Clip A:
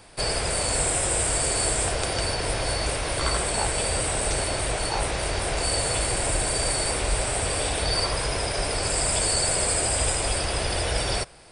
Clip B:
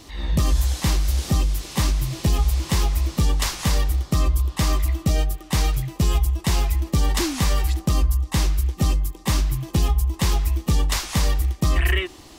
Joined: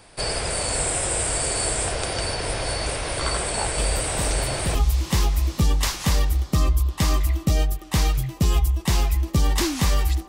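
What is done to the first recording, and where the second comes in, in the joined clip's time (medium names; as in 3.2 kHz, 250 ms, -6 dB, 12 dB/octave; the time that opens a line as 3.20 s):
clip A
3.78 s: add clip B from 1.37 s 0.97 s -6.5 dB
4.75 s: go over to clip B from 2.34 s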